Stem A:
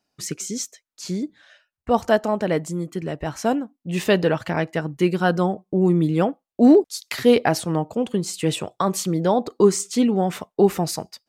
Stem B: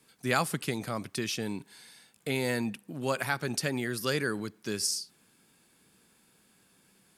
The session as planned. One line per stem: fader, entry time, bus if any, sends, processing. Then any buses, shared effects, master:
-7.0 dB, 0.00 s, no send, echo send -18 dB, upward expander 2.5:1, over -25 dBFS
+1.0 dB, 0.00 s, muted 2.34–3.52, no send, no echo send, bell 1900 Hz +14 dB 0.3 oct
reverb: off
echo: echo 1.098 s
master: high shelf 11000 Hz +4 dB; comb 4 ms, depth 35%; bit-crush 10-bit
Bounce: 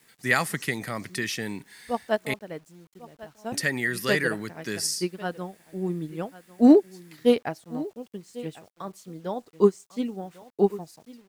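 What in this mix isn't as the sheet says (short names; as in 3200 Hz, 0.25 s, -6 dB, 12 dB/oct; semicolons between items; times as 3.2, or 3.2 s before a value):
stem A -7.0 dB -> -0.5 dB; master: missing comb 4 ms, depth 35%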